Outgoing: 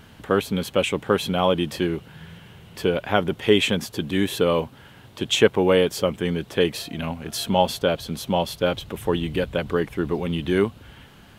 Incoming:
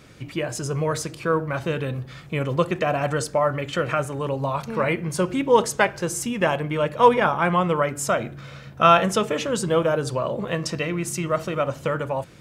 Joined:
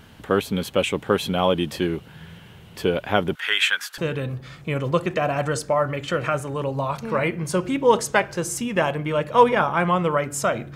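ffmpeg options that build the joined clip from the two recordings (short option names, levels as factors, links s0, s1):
-filter_complex "[0:a]asettb=1/sr,asplit=3[s0][s1][s2];[s0]atrim=end=3.354[s3];[s1]atrim=start=3.35:end=3.98,asetpts=PTS-STARTPTS,afade=t=in:d=0.004:c=qsin,afade=t=out:st=0.626:d=0.004:c=qsin,highpass=f=1500:t=q:w=4.9[s4];[s2]atrim=start=3.976[s5];[s3][s4]acrossfade=d=0.004:c1=hsin:c2=qsin[s6];[s6][s5]acrossfade=d=0.004:c1=qsin:c2=hsin,apad=whole_dur=10.75,atrim=end=10.75,atrim=end=3.982[s7];[1:a]atrim=start=1.628:end=8.4[s8];[s7][s8]acrossfade=d=0.004:c1=hsin:c2=hsin"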